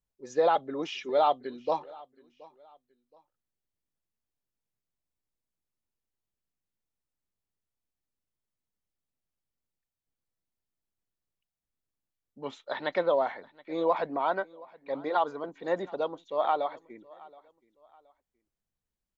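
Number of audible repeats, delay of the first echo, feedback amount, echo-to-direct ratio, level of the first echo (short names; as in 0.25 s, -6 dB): 2, 0.723 s, 33%, -22.5 dB, -23.0 dB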